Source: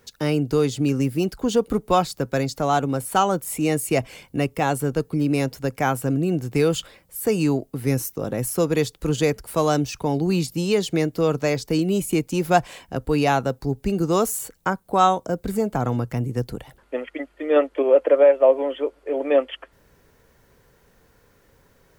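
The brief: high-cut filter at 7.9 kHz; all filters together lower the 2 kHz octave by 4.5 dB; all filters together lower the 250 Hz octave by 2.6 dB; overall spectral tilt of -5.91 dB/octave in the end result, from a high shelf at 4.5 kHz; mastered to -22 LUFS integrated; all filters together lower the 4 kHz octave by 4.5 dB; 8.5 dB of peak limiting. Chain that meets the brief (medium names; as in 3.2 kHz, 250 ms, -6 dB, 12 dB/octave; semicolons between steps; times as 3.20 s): low-pass 7.9 kHz; peaking EQ 250 Hz -3.5 dB; peaking EQ 2 kHz -5.5 dB; peaking EQ 4 kHz -8 dB; treble shelf 4.5 kHz +7.5 dB; trim +4 dB; peak limiter -10 dBFS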